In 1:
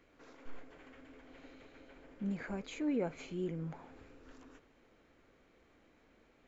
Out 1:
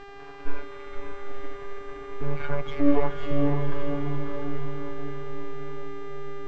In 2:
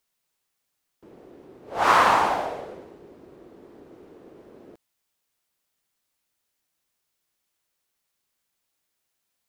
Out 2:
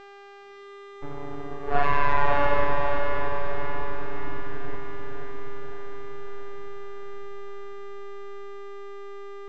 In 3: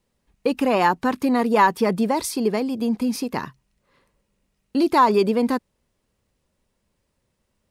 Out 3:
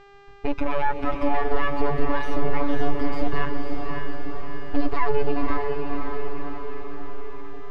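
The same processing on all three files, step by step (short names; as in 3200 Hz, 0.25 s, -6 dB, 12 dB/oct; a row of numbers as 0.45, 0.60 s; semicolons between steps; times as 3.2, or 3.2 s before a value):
moving spectral ripple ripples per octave 1.5, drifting -0.61 Hz, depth 21 dB; compressor, threshold -22 dBFS; half-wave rectifier; robotiser 143 Hz; limiter -19 dBFS; resonant low shelf 130 Hz +7 dB, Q 1.5; notch 530 Hz, Q 12; buzz 400 Hz, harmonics 20, -58 dBFS -3 dB/oct; LPF 2000 Hz 12 dB/oct; on a send: diffused feedback echo 0.551 s, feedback 60%, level -3.5 dB; on the sum: normalise peaks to -6 dBFS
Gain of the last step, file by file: +14.5, +13.5, +9.5 dB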